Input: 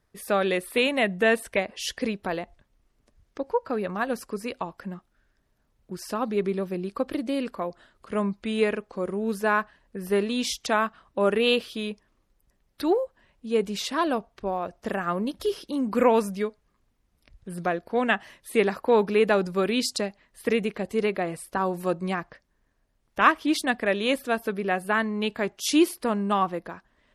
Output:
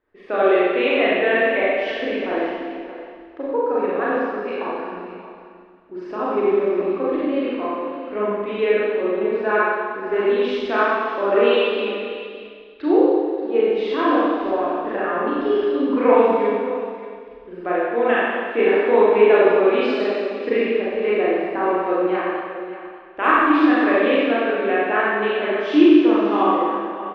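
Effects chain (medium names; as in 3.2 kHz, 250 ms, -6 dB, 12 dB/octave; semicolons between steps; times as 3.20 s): low-pass 2.9 kHz 24 dB/octave; de-esser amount 70%; resonant low shelf 240 Hz -8 dB, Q 3; on a send: delay 584 ms -14 dB; on the sum: Schroeder reverb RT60 1.8 s, combs from 30 ms, DRR -8.5 dB; trim -3 dB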